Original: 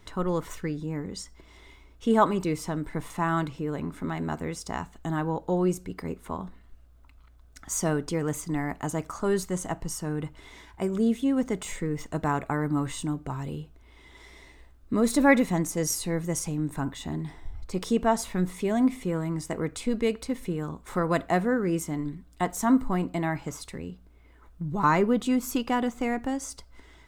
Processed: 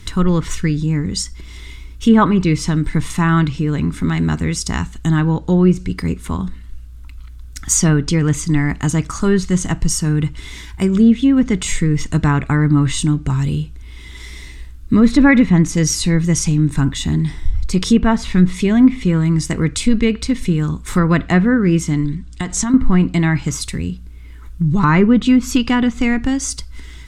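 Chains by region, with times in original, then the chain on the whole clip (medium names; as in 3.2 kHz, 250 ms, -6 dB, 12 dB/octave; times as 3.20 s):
22.05–22.74 s: low-pass 8.3 kHz 24 dB/octave + compression 3:1, threshold -30 dBFS
whole clip: low-pass that closes with the level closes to 2.3 kHz, closed at -20 dBFS; amplifier tone stack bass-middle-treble 6-0-2; loudness maximiser +33.5 dB; trim -1 dB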